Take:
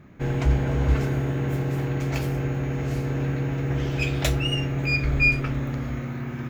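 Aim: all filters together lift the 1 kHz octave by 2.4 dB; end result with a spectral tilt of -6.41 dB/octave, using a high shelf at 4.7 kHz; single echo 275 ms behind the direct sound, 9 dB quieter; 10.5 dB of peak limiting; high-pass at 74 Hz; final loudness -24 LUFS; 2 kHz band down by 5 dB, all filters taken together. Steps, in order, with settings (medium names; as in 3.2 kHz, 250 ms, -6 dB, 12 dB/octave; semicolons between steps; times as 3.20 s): high-pass 74 Hz; peaking EQ 1 kHz +5 dB; peaking EQ 2 kHz -5.5 dB; treble shelf 4.7 kHz -8 dB; peak limiter -22 dBFS; delay 275 ms -9 dB; trim +7 dB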